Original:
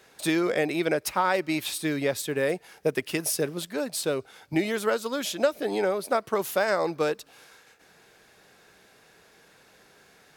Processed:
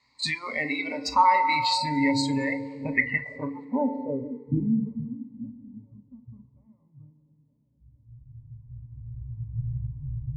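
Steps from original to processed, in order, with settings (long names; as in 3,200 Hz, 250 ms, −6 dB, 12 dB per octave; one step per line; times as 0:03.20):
camcorder AGC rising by 12 dB per second
bucket-brigade delay 462 ms, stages 2,048, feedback 63%, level −13 dB
in parallel at −1 dB: downward compressor, threshold −34 dBFS, peak gain reduction 15.5 dB
on the sum: phaser with its sweep stopped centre 2,400 Hz, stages 8
low-pass filter sweep 4,700 Hz → 120 Hz, 0:02.36–0:05.19
notch filter 7,600 Hz, Q 22
feedback delay network reverb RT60 2.6 s, high-frequency decay 0.8×, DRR 4.5 dB
noise reduction from a noise print of the clip's start 18 dB
EQ curve with evenly spaced ripples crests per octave 1, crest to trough 17 dB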